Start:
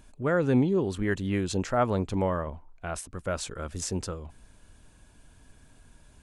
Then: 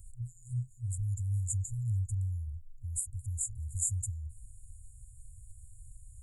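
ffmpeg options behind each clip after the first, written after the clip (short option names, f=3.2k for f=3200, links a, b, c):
-filter_complex "[0:a]afftfilt=real='re*(1-between(b*sr/4096,120,6800))':imag='im*(1-between(b*sr/4096,120,6800))':win_size=4096:overlap=0.75,acrossover=split=100|1400|1600[a][b][c][d];[a]acompressor=threshold=-47dB:ratio=6[e];[e][b][c][d]amix=inputs=4:normalize=0,volume=6dB"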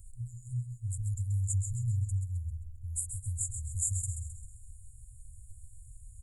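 -af "aecho=1:1:132|264|396|528|660|792:0.398|0.191|0.0917|0.044|0.0211|0.0101"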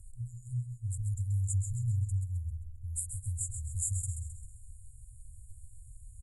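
-af "asuperstop=centerf=3100:order=4:qfactor=0.51,aresample=32000,aresample=44100"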